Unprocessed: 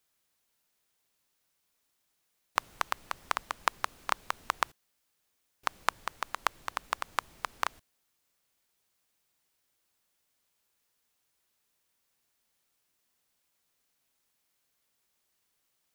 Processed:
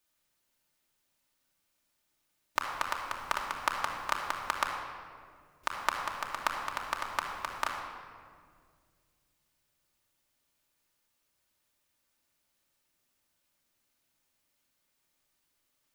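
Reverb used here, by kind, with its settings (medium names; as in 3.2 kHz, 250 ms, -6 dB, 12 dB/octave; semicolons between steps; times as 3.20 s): simulated room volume 3500 m³, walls mixed, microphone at 2.6 m; trim -3 dB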